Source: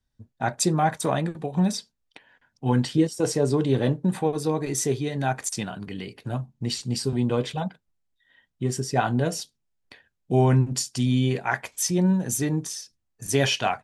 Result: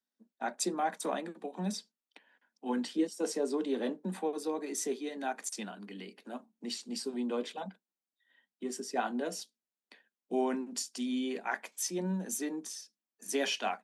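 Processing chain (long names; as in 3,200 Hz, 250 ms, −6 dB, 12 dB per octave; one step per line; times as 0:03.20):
Butterworth high-pass 190 Hz 96 dB per octave
level −9 dB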